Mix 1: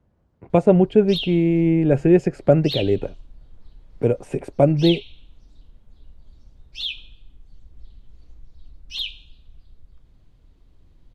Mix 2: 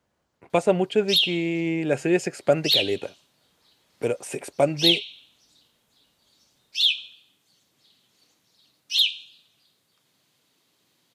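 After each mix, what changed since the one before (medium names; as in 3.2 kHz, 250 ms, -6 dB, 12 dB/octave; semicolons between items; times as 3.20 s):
background: add high-pass 130 Hz 24 dB/octave; master: add tilt EQ +4.5 dB/octave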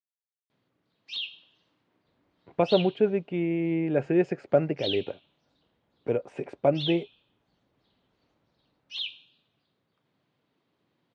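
speech: entry +2.05 s; master: add tape spacing loss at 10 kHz 39 dB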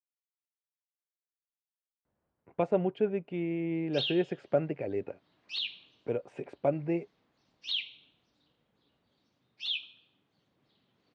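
speech -5.5 dB; background: entry +2.85 s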